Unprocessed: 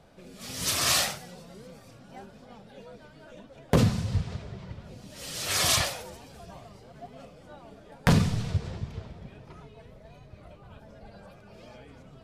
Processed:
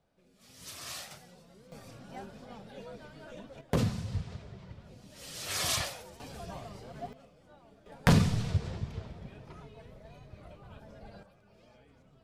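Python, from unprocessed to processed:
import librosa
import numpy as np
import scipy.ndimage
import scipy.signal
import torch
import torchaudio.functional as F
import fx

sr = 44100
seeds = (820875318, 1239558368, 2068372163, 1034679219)

y = fx.gain(x, sr, db=fx.steps((0.0, -18.0), (1.11, -10.0), (1.72, 1.0), (3.61, -7.0), (6.2, 3.0), (7.13, -10.0), (7.86, -1.5), (11.23, -11.5)))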